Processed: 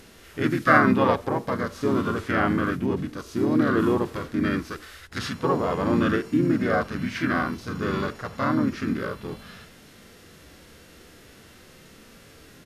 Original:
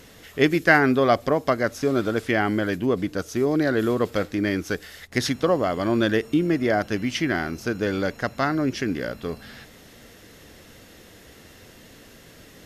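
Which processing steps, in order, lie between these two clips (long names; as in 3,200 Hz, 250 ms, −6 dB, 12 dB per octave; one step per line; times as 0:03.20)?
pitch-shifted copies added −5 semitones −3 dB, −3 semitones −4 dB
dynamic equaliser 1,200 Hz, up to +6 dB, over −36 dBFS, Q 1.2
harmonic and percussive parts rebalanced percussive −14 dB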